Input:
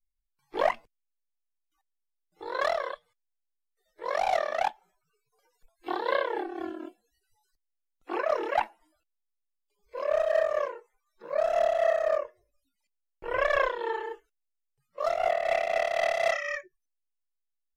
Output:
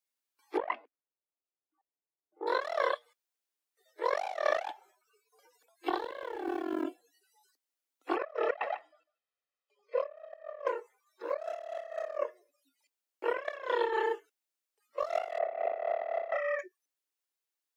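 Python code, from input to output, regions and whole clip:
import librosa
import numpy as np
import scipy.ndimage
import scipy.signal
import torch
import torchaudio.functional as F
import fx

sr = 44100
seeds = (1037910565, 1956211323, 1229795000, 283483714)

y = fx.chain(x, sr, fx.env_lowpass(base_hz=830.0, full_db=-21.5),
    fx.air_absorb(metres=440.0), at=(0.57, 2.47))
y = fx.chain(y, sr, fx.law_mismatch(coded='A'),
    fx.low_shelf(hz=140.0, db=11.5),
    fx.env_flatten(amount_pct=70), at=(5.97, 6.84))
y = fx.chain(y, sr, fx.lowpass(hz=3100.0, slope=12),
    fx.comb(ms=1.6, depth=0.75),
    fx.echo_single(ms=148, db=-17.5), at=(8.16, 10.67))
y = fx.chain(y, sr, fx.lowpass(hz=1100.0, slope=12),
    fx.peak_eq(hz=400.0, db=6.0, octaves=0.34),
    fx.notch(hz=350.0, q=5.5), at=(15.38, 16.59))
y = scipy.signal.sosfilt(scipy.signal.cheby1(5, 1.0, 270.0, 'highpass', fs=sr, output='sos'), y)
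y = fx.over_compress(y, sr, threshold_db=-33.0, ratio=-0.5)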